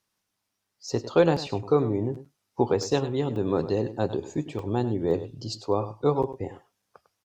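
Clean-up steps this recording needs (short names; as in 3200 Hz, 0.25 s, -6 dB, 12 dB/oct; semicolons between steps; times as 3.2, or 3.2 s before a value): interpolate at 2.83/3.36/4.59/5.11/6.82, 2.2 ms; inverse comb 0.101 s -13.5 dB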